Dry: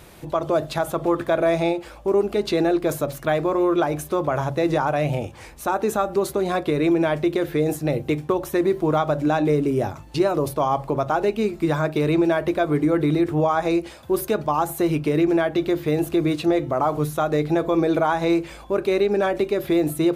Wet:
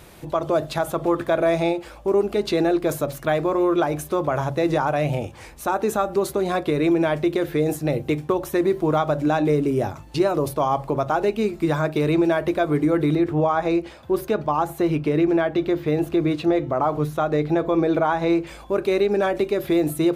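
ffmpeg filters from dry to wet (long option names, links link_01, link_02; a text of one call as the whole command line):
ffmpeg -i in.wav -filter_complex "[0:a]asettb=1/sr,asplit=3[link_01][link_02][link_03];[link_01]atrim=end=13.154[link_04];[link_02]atrim=start=13.15:end=18.47,asetpts=PTS-STARTPTS,afade=type=in:duration=0.004:curve=qsin,afade=type=out:start_time=5.316:duration=0.004:curve=qsin,equalizer=frequency=11000:width_type=o:width=1.7:gain=-10[link_05];[link_03]atrim=start=18.466[link_06];[link_04][link_05]acrossfade=duration=0.004:curve1=hsin:curve2=qsin[link_07];[link_07][link_06]acrossfade=duration=0.004:curve1=qsin:curve2=hsin" out.wav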